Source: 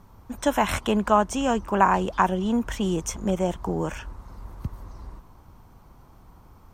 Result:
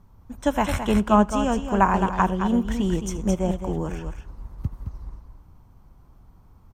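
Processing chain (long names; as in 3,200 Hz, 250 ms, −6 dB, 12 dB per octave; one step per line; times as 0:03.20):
low-shelf EQ 210 Hz +9 dB
multi-tap delay 77/216 ms −18.5/−6.5 dB
on a send at −22 dB: convolution reverb RT60 2.3 s, pre-delay 40 ms
on the sum: expander for the loud parts 1.5 to 1, over −31 dBFS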